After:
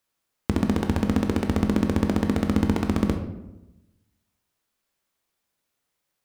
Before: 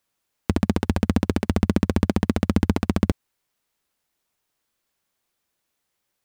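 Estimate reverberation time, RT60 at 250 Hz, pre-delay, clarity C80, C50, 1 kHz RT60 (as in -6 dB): 1.0 s, 1.2 s, 15 ms, 10.0 dB, 7.5 dB, 0.90 s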